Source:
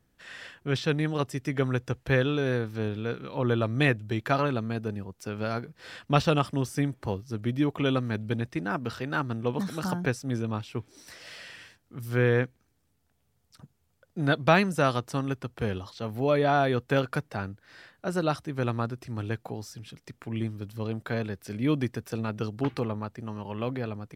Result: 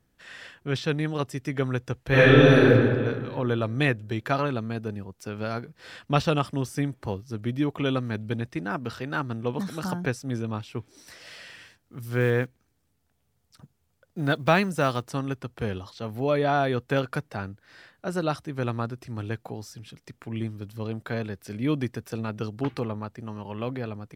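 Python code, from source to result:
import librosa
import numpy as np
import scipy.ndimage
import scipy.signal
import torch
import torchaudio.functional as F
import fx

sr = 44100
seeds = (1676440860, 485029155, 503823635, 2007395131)

y = fx.reverb_throw(x, sr, start_s=2.08, length_s=0.59, rt60_s=1.8, drr_db=-11.5)
y = fx.block_float(y, sr, bits=7, at=(11.49, 15.09))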